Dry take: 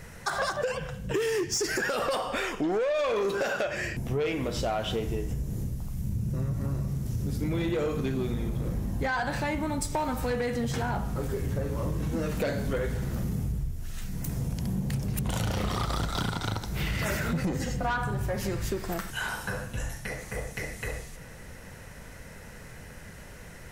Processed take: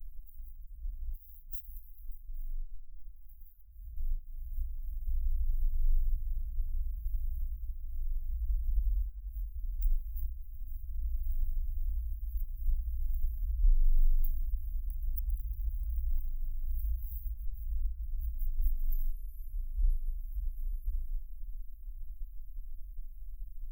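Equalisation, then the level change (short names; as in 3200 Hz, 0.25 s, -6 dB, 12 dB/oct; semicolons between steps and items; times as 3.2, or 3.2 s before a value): inverse Chebyshev band-stop 210–6000 Hz, stop band 80 dB; +13.5 dB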